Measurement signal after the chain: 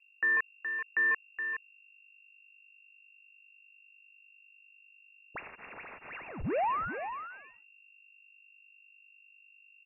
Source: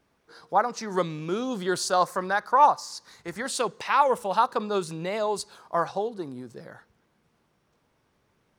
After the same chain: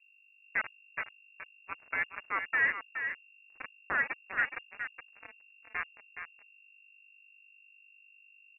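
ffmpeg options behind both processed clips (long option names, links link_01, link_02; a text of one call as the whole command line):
ffmpeg -i in.wav -filter_complex "[0:a]agate=range=-33dB:threshold=-45dB:ratio=3:detection=peak,afwtdn=0.0316,aderivative,acrusher=bits=5:mix=0:aa=0.5,aeval=exprs='val(0)+0.000282*(sin(2*PI*50*n/s)+sin(2*PI*2*50*n/s)/2+sin(2*PI*3*50*n/s)/3+sin(2*PI*4*50*n/s)/4+sin(2*PI*5*50*n/s)/5)':channel_layout=same,asplit=2[link_01][link_02];[link_02]volume=35.5dB,asoftclip=hard,volume=-35.5dB,volume=-5dB[link_03];[link_01][link_03]amix=inputs=2:normalize=0,asplit=2[link_04][link_05];[link_05]adelay=419.8,volume=-7dB,highshelf=frequency=4000:gain=-9.45[link_06];[link_04][link_06]amix=inputs=2:normalize=0,lowpass=frequency=2400:width_type=q:width=0.5098,lowpass=frequency=2400:width_type=q:width=0.6013,lowpass=frequency=2400:width_type=q:width=0.9,lowpass=frequency=2400:width_type=q:width=2.563,afreqshift=-2800,volume=5dB" out.wav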